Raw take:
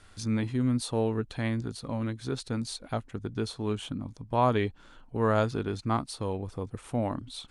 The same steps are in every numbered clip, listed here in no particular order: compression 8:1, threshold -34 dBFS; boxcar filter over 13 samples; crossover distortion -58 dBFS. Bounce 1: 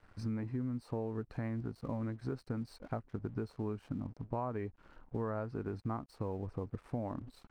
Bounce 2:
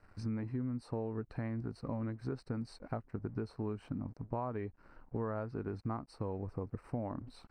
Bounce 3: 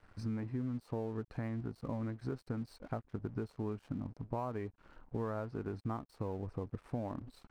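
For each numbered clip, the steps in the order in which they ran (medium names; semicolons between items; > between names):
boxcar filter > crossover distortion > compression; crossover distortion > compression > boxcar filter; compression > boxcar filter > crossover distortion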